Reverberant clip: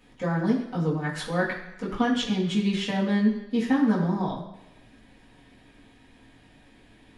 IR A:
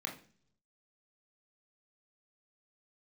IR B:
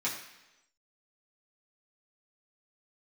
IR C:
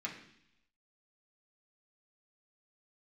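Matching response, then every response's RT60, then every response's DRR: B; 0.45 s, 1.0 s, 0.70 s; 0.5 dB, -7.5 dB, -3.5 dB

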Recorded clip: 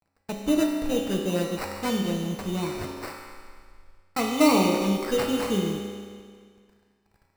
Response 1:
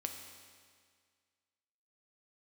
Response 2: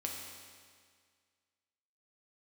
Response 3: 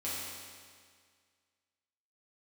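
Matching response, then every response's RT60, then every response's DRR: 2; 1.9 s, 1.9 s, 1.9 s; 3.5 dB, -1.0 dB, -9.5 dB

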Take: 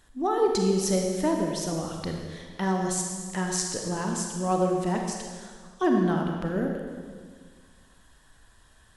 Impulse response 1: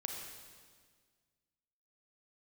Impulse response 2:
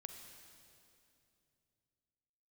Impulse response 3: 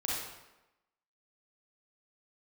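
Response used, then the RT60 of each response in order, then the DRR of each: 1; 1.7 s, 2.7 s, 1.0 s; 1.0 dB, 5.0 dB, -5.5 dB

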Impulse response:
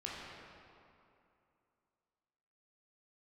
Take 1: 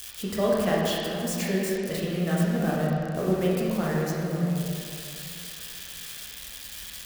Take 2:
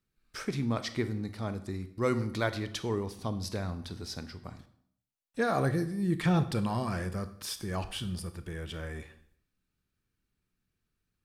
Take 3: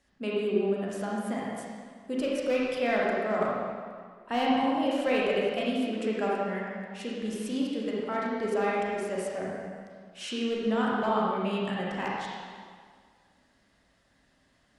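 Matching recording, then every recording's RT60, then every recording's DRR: 1; 2.7 s, 0.65 s, 1.9 s; -5.5 dB, 11.0 dB, -5.0 dB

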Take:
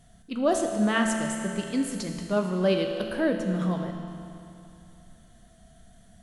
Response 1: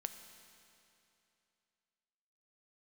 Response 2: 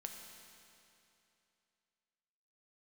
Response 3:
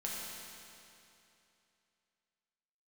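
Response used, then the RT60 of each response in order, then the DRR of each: 2; 2.8 s, 2.8 s, 2.8 s; 8.0 dB, 2.5 dB, -5.0 dB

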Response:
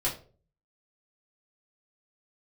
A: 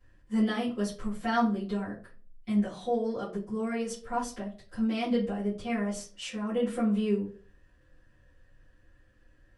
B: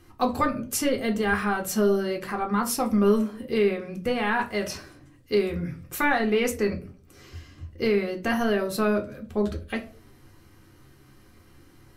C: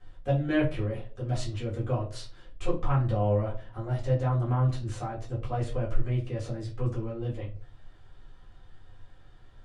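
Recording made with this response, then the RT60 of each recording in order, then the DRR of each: C; 0.40 s, 0.40 s, 0.40 s; -13.5 dB, 3.0 dB, -6.5 dB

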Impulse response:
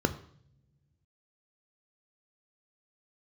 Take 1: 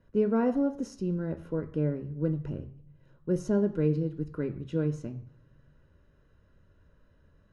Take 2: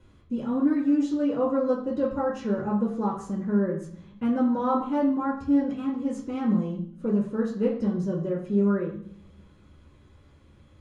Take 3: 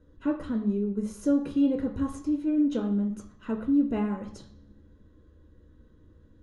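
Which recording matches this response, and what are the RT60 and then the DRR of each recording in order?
1; no single decay rate, no single decay rate, no single decay rate; 9.5 dB, -3.0 dB, 3.0 dB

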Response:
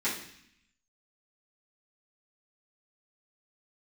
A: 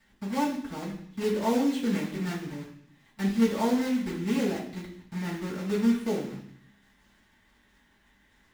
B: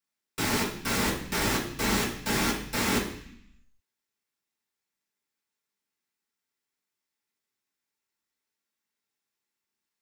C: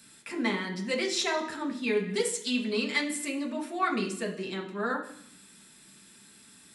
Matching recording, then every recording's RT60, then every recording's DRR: A; 0.65 s, 0.65 s, 0.65 s; -12.0 dB, -7.0 dB, -0.5 dB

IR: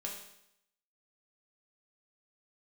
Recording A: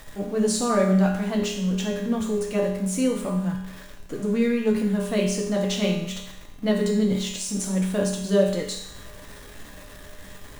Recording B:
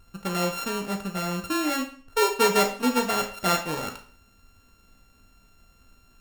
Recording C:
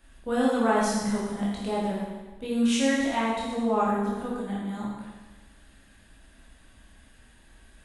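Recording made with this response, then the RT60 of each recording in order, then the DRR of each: A; 0.75 s, 0.45 s, 1.2 s; -2.0 dB, 3.5 dB, -6.5 dB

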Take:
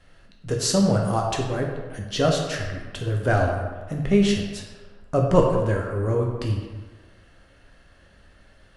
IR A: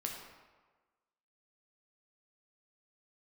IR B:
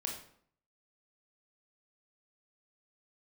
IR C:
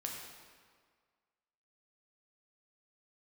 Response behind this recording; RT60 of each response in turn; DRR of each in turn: A; 1.3 s, 0.60 s, 1.8 s; 0.0 dB, 0.0 dB, -1.0 dB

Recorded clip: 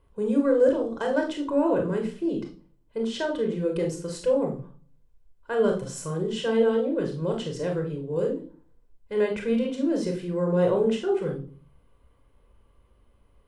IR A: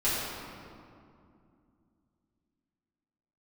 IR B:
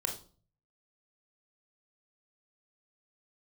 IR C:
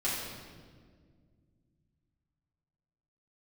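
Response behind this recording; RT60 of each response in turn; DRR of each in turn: B; 2.5 s, 0.40 s, 1.8 s; -12.5 dB, 2.5 dB, -9.0 dB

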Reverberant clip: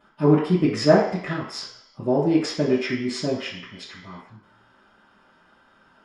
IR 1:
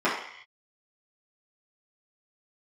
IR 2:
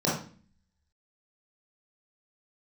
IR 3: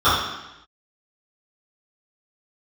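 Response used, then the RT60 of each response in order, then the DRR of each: 1; no single decay rate, 0.40 s, 0.90 s; -10.5 dB, -7.0 dB, -18.0 dB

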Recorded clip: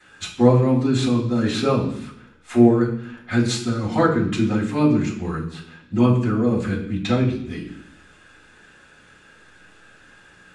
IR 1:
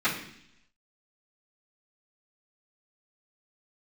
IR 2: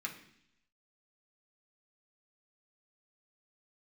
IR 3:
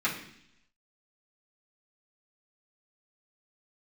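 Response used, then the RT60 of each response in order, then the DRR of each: 1; 0.70 s, 0.70 s, 0.70 s; -17.0 dB, -1.5 dB, -9.0 dB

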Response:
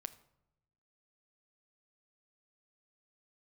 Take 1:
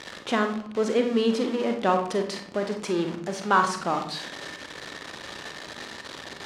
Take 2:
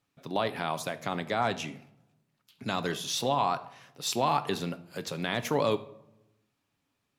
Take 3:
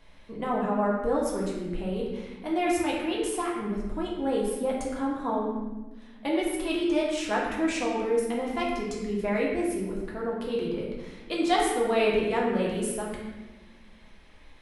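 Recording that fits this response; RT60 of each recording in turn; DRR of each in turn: 2; 0.65 s, 0.85 s, 1.2 s; 5.0 dB, 10.5 dB, -5.0 dB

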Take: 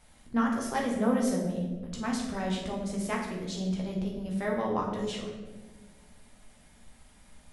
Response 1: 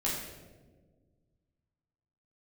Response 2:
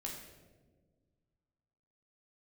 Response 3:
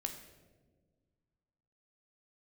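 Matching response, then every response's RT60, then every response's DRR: 2; 1.5 s, 1.5 s, 1.5 s; -7.0 dB, -2.0 dB, 4.5 dB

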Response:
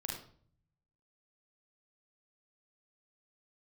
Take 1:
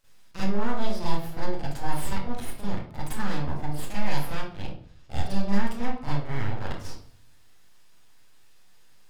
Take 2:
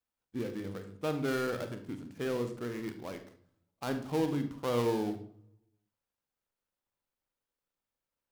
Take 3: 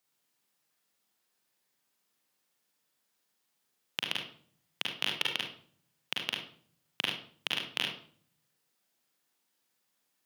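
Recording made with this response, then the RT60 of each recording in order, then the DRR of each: 3; 0.50 s, 0.55 s, 0.50 s; -11.0 dB, 7.5 dB, -2.0 dB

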